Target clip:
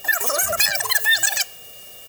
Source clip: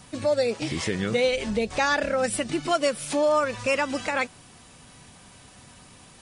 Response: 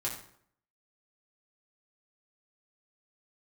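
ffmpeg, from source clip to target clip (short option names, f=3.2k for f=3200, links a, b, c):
-filter_complex "[0:a]aeval=exprs='val(0)+0.00355*sin(2*PI*950*n/s)':c=same,aecho=1:1:5:0.75,asetrate=131418,aresample=44100,aemphasis=mode=production:type=50kf,asplit=2[a][b];[1:a]atrim=start_sample=2205[c];[b][c]afir=irnorm=-1:irlink=0,volume=-19.5dB[d];[a][d]amix=inputs=2:normalize=0,volume=-1dB"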